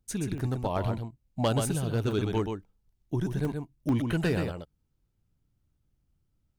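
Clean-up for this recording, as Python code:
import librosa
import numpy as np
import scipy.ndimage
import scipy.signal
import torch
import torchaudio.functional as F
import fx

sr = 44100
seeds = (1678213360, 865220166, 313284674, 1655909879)

y = fx.fix_declip(x, sr, threshold_db=-19.0)
y = fx.fix_interpolate(y, sr, at_s=(0.38, 2.11, 2.63, 3.45, 3.89), length_ms=1.1)
y = fx.fix_echo_inverse(y, sr, delay_ms=127, level_db=-6.0)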